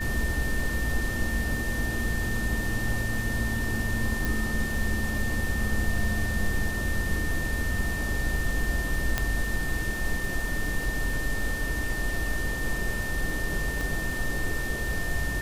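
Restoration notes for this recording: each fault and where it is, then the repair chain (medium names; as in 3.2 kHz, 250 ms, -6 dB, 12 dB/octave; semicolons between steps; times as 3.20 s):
crackle 29 per s -34 dBFS
whine 1.8 kHz -32 dBFS
4.25 s: pop
9.18 s: pop -9 dBFS
13.81 s: pop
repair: de-click; band-stop 1.8 kHz, Q 30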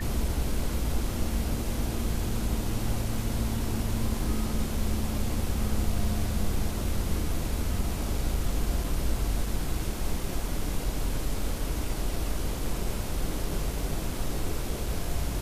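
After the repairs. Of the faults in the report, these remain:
4.25 s: pop
13.81 s: pop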